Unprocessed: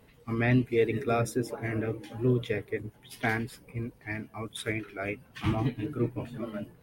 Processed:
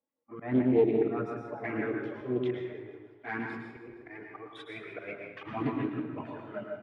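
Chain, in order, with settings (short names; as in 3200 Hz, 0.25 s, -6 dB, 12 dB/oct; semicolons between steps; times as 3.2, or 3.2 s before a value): LPF 1100 Hz 12 dB/oct, from 1.64 s 1900 Hz; gate -49 dBFS, range -30 dB; HPF 290 Hz 12 dB/oct; dynamic EQ 550 Hz, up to -4 dB, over -42 dBFS, Q 2; auto swell 0.175 s; envelope flanger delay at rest 3.6 ms, full sweep at -29 dBFS; feedback echo 0.158 s, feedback 51%, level -14 dB; plate-style reverb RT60 0.85 s, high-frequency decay 0.7×, pre-delay 95 ms, DRR 2.5 dB; Doppler distortion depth 0.24 ms; gain +5.5 dB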